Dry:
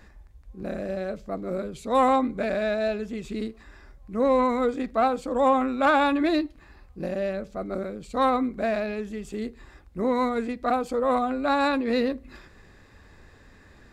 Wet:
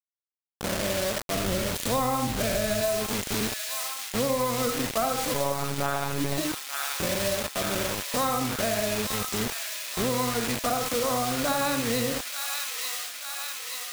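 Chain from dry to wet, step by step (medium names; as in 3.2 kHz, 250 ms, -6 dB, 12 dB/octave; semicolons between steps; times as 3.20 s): octave divider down 1 oct, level -5 dB; 1.35–2.82 s: bass shelf 130 Hz +10.5 dB; reverberation RT60 0.35 s, pre-delay 20 ms, DRR 4 dB; 5.34–6.38 s: monotone LPC vocoder at 8 kHz 140 Hz; bit crusher 5-bit; treble shelf 3 kHz +8 dB; feedback echo behind a high-pass 884 ms, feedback 70%, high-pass 1.9 kHz, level -6.5 dB; compression 6:1, threshold -23 dBFS, peak gain reduction 12 dB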